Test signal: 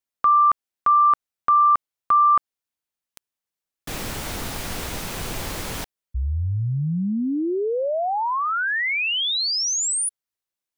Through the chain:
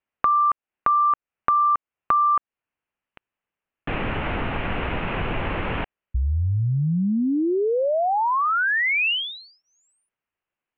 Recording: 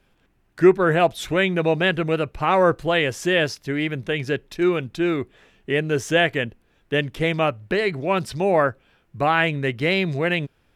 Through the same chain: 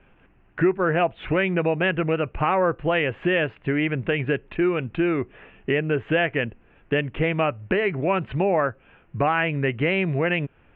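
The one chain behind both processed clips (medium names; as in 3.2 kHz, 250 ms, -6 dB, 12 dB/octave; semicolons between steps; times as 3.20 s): elliptic low-pass 2.8 kHz, stop band 50 dB; compression 3:1, threshold -29 dBFS; trim +7.5 dB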